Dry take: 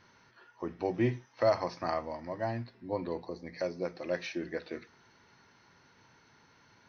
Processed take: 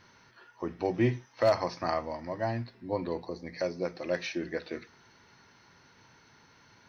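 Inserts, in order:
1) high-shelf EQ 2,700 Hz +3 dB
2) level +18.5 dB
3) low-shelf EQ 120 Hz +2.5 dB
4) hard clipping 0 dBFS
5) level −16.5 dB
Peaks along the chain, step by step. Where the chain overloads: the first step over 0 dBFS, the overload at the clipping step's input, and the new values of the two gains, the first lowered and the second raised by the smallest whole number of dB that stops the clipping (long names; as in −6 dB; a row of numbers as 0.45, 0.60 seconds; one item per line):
−15.0, +3.5, +3.5, 0.0, −16.5 dBFS
step 2, 3.5 dB
step 2 +14.5 dB, step 5 −12.5 dB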